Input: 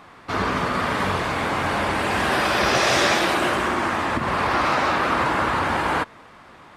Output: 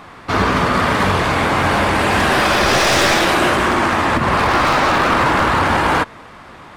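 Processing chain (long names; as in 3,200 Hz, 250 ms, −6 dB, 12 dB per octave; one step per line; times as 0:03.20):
wavefolder on the positive side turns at −16 dBFS
low-shelf EQ 120 Hz +4.5 dB
in parallel at −2 dB: brickwall limiter −14.5 dBFS, peak gain reduction 8 dB
on the sum: level +2.5 dB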